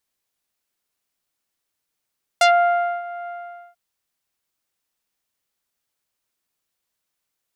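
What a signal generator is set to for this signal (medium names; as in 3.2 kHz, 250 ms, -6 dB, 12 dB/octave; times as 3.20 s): synth note saw F5 24 dB/octave, low-pass 1.6 kHz, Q 0.71, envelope 3 oct, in 0.11 s, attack 3.7 ms, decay 0.61 s, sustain -18 dB, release 0.47 s, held 0.87 s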